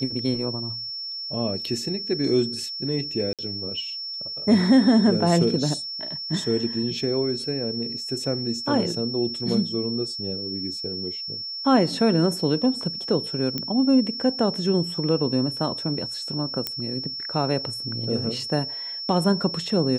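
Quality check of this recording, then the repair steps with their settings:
tone 5400 Hz -30 dBFS
3.33–3.39 gap 57 ms
13.58 pop -13 dBFS
16.67 pop -10 dBFS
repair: de-click; notch 5400 Hz, Q 30; interpolate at 3.33, 57 ms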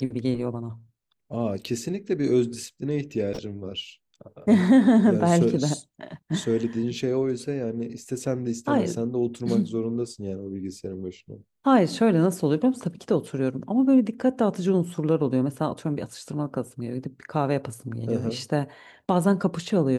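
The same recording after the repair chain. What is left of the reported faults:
none

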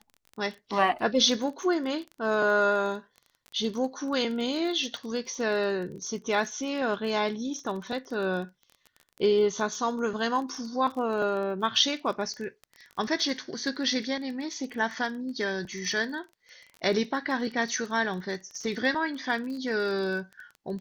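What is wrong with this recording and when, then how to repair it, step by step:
crackle 23/s -35 dBFS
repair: de-click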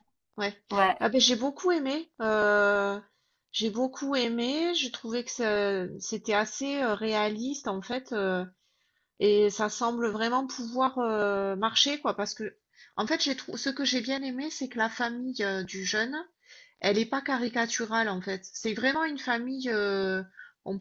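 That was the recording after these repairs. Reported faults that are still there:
none

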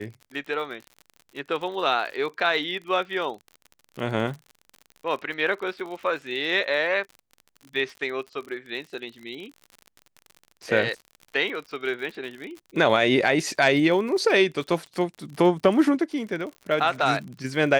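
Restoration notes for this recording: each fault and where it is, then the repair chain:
crackle 54/s -34 dBFS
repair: de-click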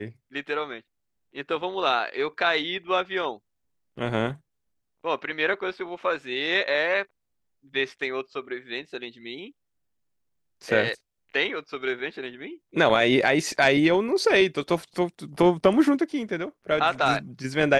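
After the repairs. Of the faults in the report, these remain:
none

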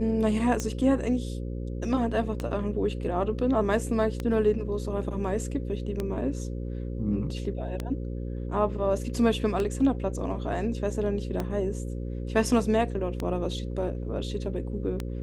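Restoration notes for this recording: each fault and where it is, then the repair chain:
buzz 60 Hz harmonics 9 -33 dBFS
tick 33 1/3 rpm -16 dBFS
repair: de-click; de-hum 60 Hz, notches 9

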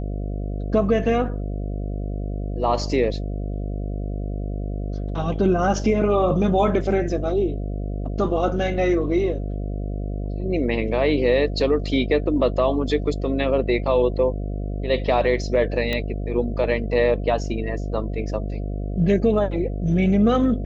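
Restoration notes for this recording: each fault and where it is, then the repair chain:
buzz 50 Hz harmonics 14 -27 dBFS
15.93 pop -12 dBFS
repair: de-click; de-hum 50 Hz, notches 14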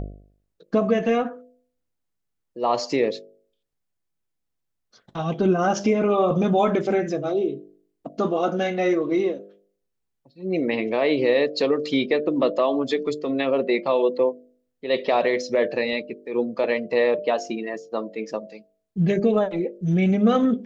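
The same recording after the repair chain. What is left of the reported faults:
none

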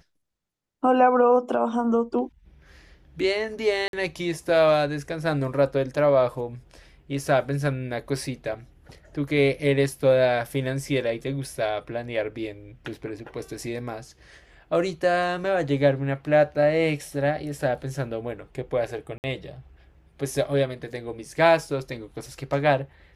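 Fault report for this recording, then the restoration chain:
3.88–3.93 gap 52 ms
19.18–19.24 gap 59 ms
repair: interpolate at 3.88, 52 ms; interpolate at 19.18, 59 ms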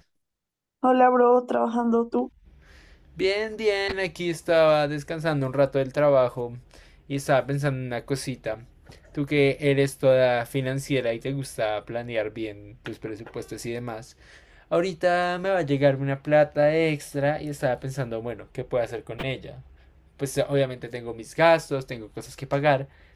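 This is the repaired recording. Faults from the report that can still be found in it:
none

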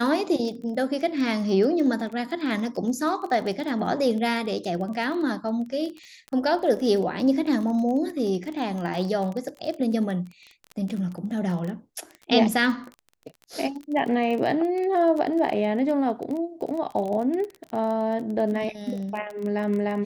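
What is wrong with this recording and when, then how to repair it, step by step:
crackle 22/s -30 dBFS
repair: de-click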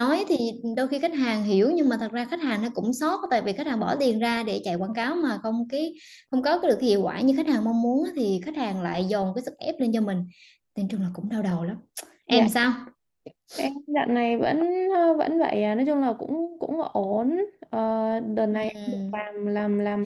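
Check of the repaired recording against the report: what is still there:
none

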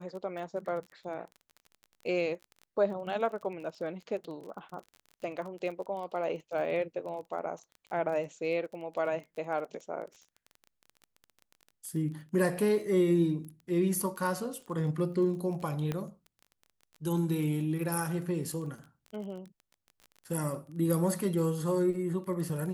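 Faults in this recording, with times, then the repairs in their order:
crackle 23/s -40 dBFS
15.92 pop -20 dBFS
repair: de-click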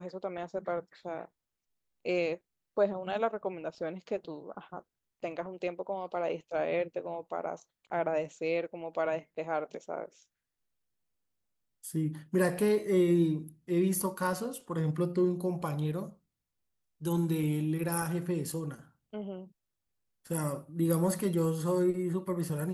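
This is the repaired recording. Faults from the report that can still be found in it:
none

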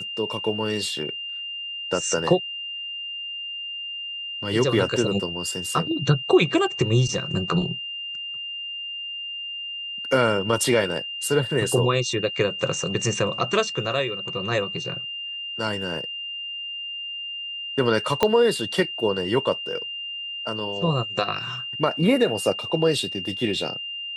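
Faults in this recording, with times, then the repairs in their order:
tone 2800 Hz -30 dBFS
18.23 pop -5 dBFS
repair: de-click; notch 2800 Hz, Q 30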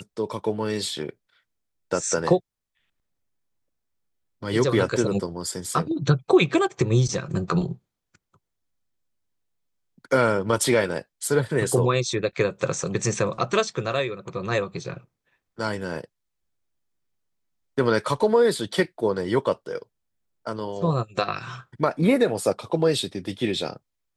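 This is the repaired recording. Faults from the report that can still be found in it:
18.23 pop

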